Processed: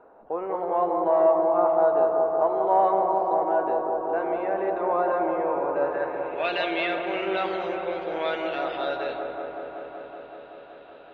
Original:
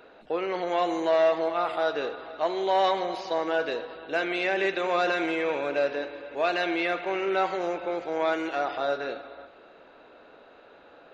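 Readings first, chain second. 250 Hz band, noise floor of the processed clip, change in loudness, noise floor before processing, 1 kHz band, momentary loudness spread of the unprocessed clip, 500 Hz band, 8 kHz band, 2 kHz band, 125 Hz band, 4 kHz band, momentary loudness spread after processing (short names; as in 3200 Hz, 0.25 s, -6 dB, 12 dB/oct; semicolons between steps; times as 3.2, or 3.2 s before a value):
+0.5 dB, -47 dBFS, +2.5 dB, -53 dBFS, +4.5 dB, 9 LU, +3.5 dB, n/a, -3.5 dB, +1.0 dB, -3.0 dB, 14 LU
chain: low-pass sweep 950 Hz -> 3300 Hz, 5.7–6.52; dark delay 0.189 s, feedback 82%, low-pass 1100 Hz, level -3.5 dB; gain -3.5 dB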